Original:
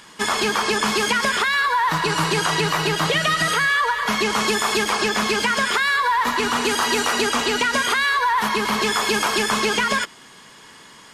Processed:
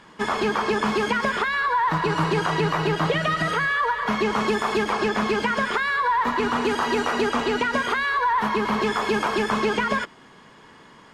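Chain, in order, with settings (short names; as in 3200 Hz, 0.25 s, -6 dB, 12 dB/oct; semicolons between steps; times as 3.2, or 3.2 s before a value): LPF 1100 Hz 6 dB/oct; gain +1 dB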